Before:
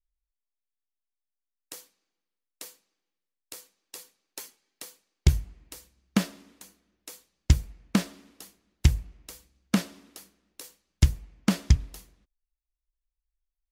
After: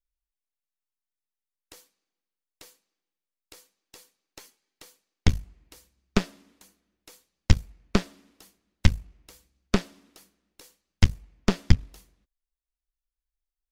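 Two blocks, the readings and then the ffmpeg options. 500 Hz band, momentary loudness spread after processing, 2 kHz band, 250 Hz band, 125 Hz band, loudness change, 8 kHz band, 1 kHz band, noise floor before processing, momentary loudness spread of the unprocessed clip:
+6.5 dB, 13 LU, +3.0 dB, -0.5 dB, -0.5 dB, -0.5 dB, -4.0 dB, +3.0 dB, under -85 dBFS, 21 LU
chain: -filter_complex "[0:a]aeval=exprs='0.596*(cos(1*acos(clip(val(0)/0.596,-1,1)))-cos(1*PI/2))+0.237*(cos(4*acos(clip(val(0)/0.596,-1,1)))-cos(4*PI/2))+0.0335*(cos(7*acos(clip(val(0)/0.596,-1,1)))-cos(7*PI/2))':c=same,acrossover=split=6400[a][b];[b]acompressor=threshold=-50dB:ratio=4:attack=1:release=60[c];[a][c]amix=inputs=2:normalize=0"

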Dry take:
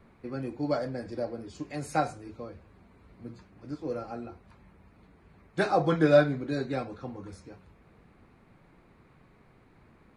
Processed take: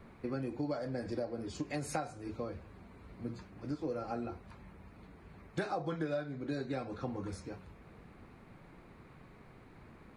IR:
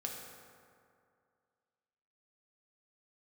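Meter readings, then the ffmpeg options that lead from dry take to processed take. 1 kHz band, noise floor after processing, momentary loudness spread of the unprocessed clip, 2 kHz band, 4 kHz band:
-9.5 dB, -57 dBFS, 24 LU, -10.5 dB, -8.0 dB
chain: -af "acompressor=threshold=-36dB:ratio=10,volume=3dB"

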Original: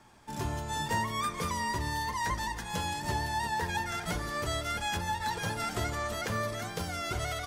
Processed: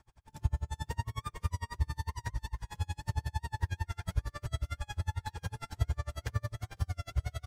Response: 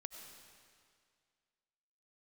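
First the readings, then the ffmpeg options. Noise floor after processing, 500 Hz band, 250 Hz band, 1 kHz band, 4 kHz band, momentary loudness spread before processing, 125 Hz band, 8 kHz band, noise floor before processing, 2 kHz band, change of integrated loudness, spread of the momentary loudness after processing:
-70 dBFS, -13.0 dB, -11.0 dB, -12.0 dB, -11.5 dB, 3 LU, +3.0 dB, -12.0 dB, -40 dBFS, -11.5 dB, -5.0 dB, 4 LU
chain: -filter_complex "[0:a]lowshelf=f=140:t=q:w=1.5:g=14,asplit=2[a][b];[b]aecho=0:1:447:0.299[c];[a][c]amix=inputs=2:normalize=0,aeval=exprs='val(0)*pow(10,-38*(0.5-0.5*cos(2*PI*11*n/s))/20)':c=same,volume=-5dB"

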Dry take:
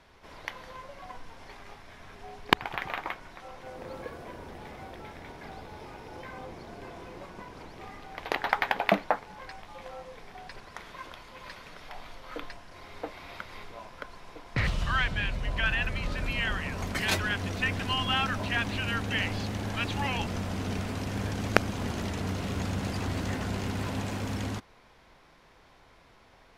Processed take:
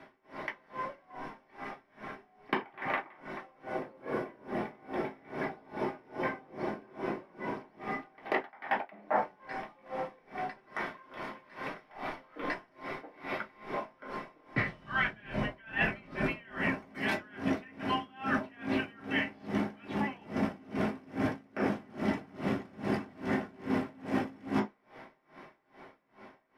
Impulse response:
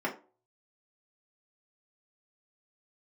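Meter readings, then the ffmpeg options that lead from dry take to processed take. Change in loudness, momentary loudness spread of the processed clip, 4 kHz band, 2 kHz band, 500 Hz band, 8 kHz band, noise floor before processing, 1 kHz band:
-5.0 dB, 11 LU, -11.5 dB, -4.0 dB, 0.0 dB, under -15 dB, -58 dBFS, -2.0 dB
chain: -filter_complex "[0:a]dynaudnorm=f=170:g=17:m=3dB[a];[1:a]atrim=start_sample=2205[b];[a][b]afir=irnorm=-1:irlink=0,areverse,acompressor=threshold=-25dB:ratio=16,areverse,aeval=exprs='val(0)*pow(10,-27*(0.5-0.5*cos(2*PI*2.4*n/s))/20)':c=same,volume=1dB"

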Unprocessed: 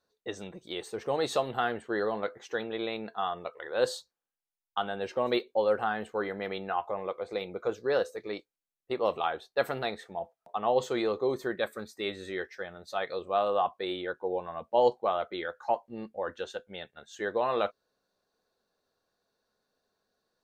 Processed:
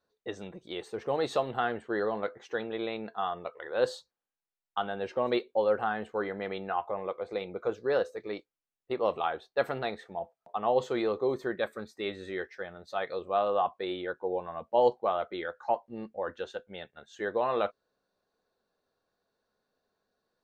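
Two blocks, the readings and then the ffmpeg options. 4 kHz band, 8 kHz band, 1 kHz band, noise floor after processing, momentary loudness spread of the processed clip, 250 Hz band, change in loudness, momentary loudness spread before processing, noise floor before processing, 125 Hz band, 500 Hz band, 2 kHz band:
-3.5 dB, n/a, -0.5 dB, under -85 dBFS, 12 LU, 0.0 dB, -0.5 dB, 12 LU, under -85 dBFS, 0.0 dB, 0.0 dB, -1.0 dB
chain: -af "lowpass=f=3.2k:p=1"

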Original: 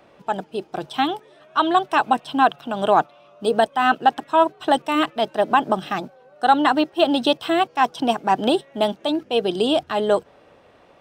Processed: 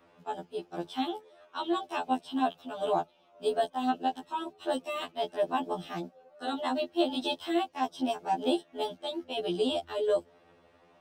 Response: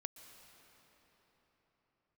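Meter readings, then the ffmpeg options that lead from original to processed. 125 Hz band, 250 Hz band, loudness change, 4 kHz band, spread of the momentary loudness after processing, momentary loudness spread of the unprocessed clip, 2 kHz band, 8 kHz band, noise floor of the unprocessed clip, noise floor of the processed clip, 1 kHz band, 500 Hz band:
-11.5 dB, -10.0 dB, -11.5 dB, -10.5 dB, 9 LU, 10 LU, -16.5 dB, n/a, -53 dBFS, -63 dBFS, -13.5 dB, -10.0 dB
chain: -filter_complex "[0:a]acrossover=split=180|850|2500[a][b][c][d];[c]acompressor=threshold=-36dB:ratio=16[e];[a][b][e][d]amix=inputs=4:normalize=0,afftfilt=real='re*2*eq(mod(b,4),0)':imag='im*2*eq(mod(b,4),0)':win_size=2048:overlap=0.75,volume=-6.5dB"

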